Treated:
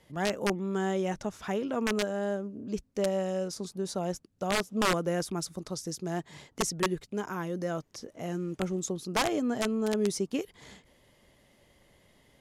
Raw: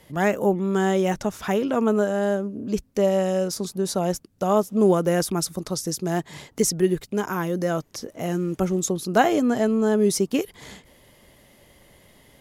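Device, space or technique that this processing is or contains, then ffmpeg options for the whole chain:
overflowing digital effects unit: -af "aeval=exprs='(mod(3.55*val(0)+1,2)-1)/3.55':c=same,lowpass=9.5k,volume=-8.5dB"

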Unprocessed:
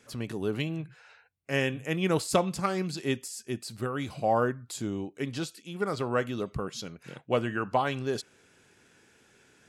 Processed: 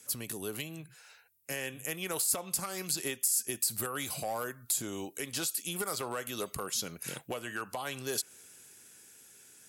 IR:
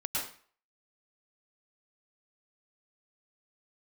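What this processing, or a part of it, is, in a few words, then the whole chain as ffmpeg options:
FM broadcast chain: -filter_complex "[0:a]highpass=f=52:p=1,dynaudnorm=f=270:g=17:m=10dB,acrossover=split=450|2500[a][b][c];[a]acompressor=threshold=-35dB:ratio=4[d];[b]acompressor=threshold=-21dB:ratio=4[e];[c]acompressor=threshold=-39dB:ratio=4[f];[d][e][f]amix=inputs=3:normalize=0,aemphasis=mode=production:type=50fm,alimiter=limit=-20dB:level=0:latency=1:release=343,asoftclip=type=hard:threshold=-22.5dB,lowpass=f=15k:w=0.5412,lowpass=f=15k:w=1.3066,aemphasis=mode=production:type=50fm,volume=-5dB"

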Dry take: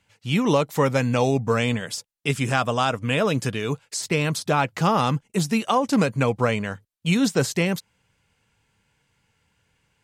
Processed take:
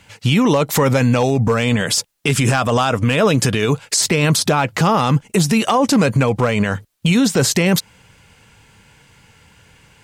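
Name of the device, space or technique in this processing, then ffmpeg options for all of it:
loud club master: -af "acompressor=threshold=-25dB:ratio=2,asoftclip=type=hard:threshold=-16dB,alimiter=level_in=24.5dB:limit=-1dB:release=50:level=0:latency=1,volume=-6dB"

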